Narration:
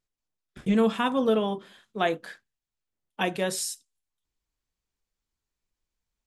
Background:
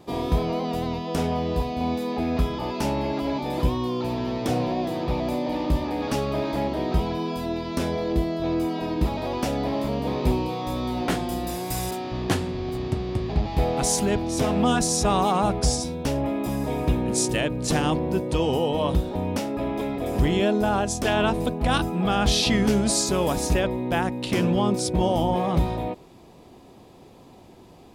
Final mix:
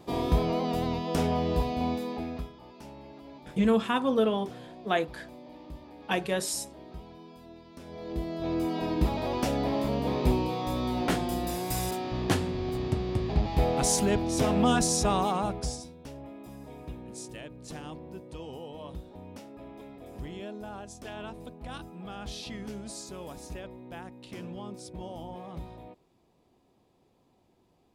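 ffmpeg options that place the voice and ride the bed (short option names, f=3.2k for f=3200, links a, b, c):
-filter_complex "[0:a]adelay=2900,volume=-1.5dB[a];[1:a]volume=16.5dB,afade=t=out:st=1.71:d=0.82:silence=0.112202,afade=t=in:st=7.84:d=0.99:silence=0.11885,afade=t=out:st=14.84:d=1.1:silence=0.158489[b];[a][b]amix=inputs=2:normalize=0"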